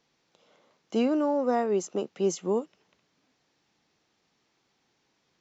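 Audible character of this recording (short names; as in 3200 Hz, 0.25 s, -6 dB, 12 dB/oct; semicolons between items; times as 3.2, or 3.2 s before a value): noise floor -74 dBFS; spectral tilt -4.0 dB/oct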